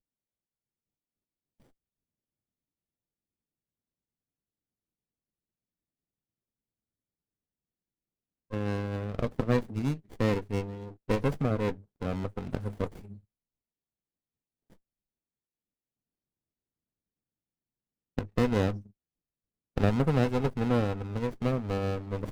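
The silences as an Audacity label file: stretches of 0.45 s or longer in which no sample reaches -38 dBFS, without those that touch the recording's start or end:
13.130000	18.180000	silence
18.790000	19.770000	silence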